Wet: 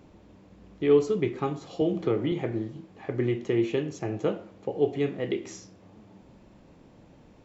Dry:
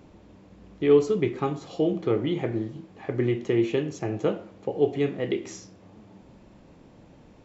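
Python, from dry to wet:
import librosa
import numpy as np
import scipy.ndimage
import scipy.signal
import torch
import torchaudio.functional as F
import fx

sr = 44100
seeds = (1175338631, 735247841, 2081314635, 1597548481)

y = fx.band_squash(x, sr, depth_pct=70, at=(1.81, 2.32))
y = y * 10.0 ** (-2.0 / 20.0)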